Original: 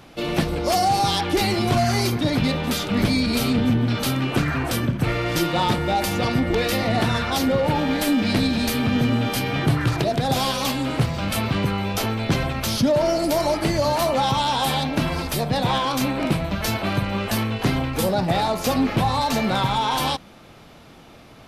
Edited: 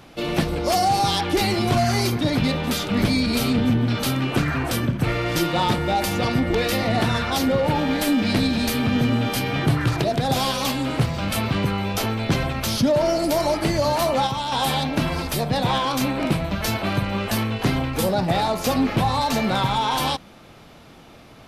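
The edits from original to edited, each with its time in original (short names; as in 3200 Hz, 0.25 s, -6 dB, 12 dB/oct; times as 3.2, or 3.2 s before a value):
14.27–14.52 gain -5 dB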